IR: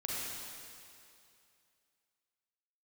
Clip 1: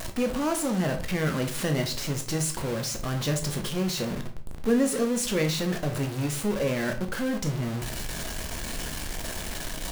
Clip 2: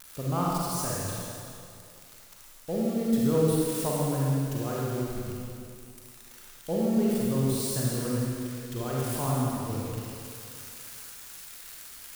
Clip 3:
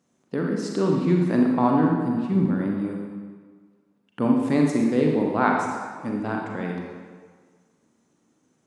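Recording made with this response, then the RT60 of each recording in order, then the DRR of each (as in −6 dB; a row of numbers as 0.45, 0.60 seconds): 2; 0.45, 2.5, 1.6 seconds; 4.0, −5.5, −0.5 decibels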